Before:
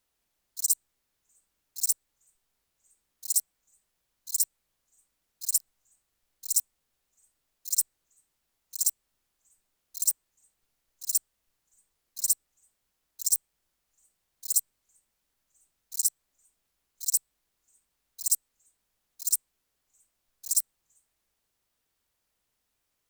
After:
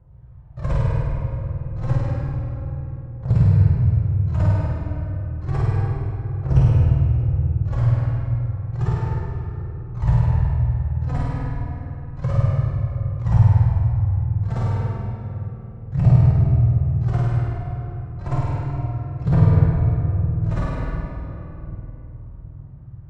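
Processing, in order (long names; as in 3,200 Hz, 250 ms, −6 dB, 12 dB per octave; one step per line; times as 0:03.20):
each half-wave held at its own peak
high-pass filter 78 Hz
low shelf with overshoot 170 Hz +10 dB, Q 3
harmonic and percussive parts rebalanced harmonic +6 dB
spectral tilt −4 dB per octave
brickwall limiter −14.5 dBFS, peak gain reduction 7.5 dB
phase shifter 0.31 Hz, delay 4.5 ms, feedback 59%
low-pass filter 1,200 Hz 12 dB per octave
flutter between parallel walls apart 8.7 metres, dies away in 1.2 s
rectangular room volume 200 cubic metres, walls hard, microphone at 0.9 metres
level +3 dB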